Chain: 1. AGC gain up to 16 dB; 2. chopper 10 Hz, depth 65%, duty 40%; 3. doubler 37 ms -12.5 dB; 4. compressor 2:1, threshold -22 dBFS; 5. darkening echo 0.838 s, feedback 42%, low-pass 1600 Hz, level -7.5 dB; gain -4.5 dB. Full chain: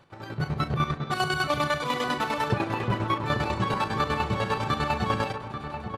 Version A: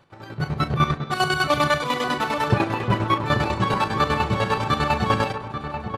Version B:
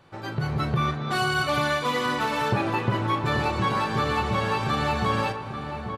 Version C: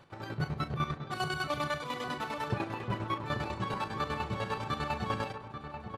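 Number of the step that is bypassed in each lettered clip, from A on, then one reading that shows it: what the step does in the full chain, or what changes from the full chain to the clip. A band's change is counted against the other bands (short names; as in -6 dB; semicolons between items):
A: 4, mean gain reduction 4.0 dB; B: 2, crest factor change -2.0 dB; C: 1, momentary loudness spread change -2 LU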